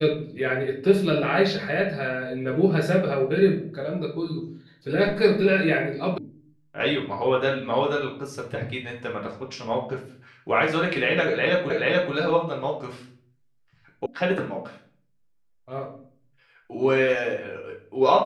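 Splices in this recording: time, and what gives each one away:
0:06.18: cut off before it has died away
0:11.70: the same again, the last 0.43 s
0:14.06: cut off before it has died away

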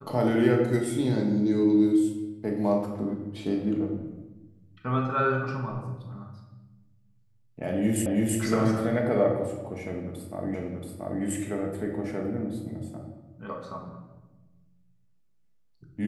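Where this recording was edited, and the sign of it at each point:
0:08.06: the same again, the last 0.33 s
0:10.54: the same again, the last 0.68 s

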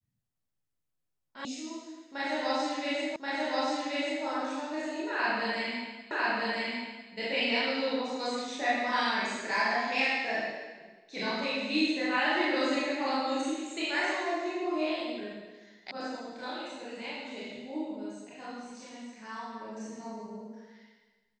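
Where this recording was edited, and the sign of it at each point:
0:01.45: cut off before it has died away
0:03.16: the same again, the last 1.08 s
0:06.11: the same again, the last 1 s
0:15.91: cut off before it has died away

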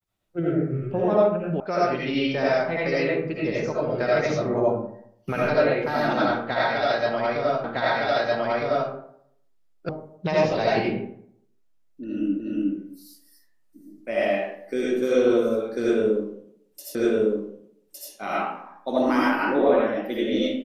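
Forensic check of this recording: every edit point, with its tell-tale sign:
0:01.60: cut off before it has died away
0:07.64: the same again, the last 1.26 s
0:09.89: cut off before it has died away
0:12.40: the same again, the last 0.36 s
0:16.95: the same again, the last 1.16 s

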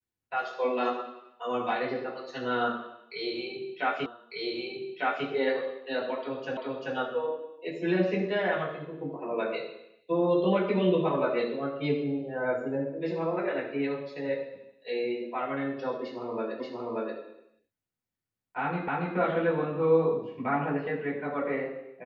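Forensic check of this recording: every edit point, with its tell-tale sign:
0:04.06: the same again, the last 1.2 s
0:06.57: the same again, the last 0.39 s
0:16.60: the same again, the last 0.58 s
0:18.88: the same again, the last 0.28 s

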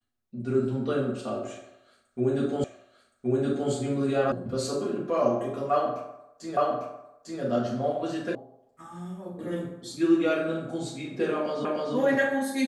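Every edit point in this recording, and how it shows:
0:02.64: the same again, the last 1.07 s
0:04.32: cut off before it has died away
0:06.57: the same again, the last 0.85 s
0:08.35: cut off before it has died away
0:11.65: the same again, the last 0.3 s

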